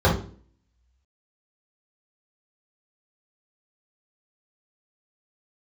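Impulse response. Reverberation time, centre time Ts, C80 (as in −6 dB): 0.45 s, 28 ms, 12.0 dB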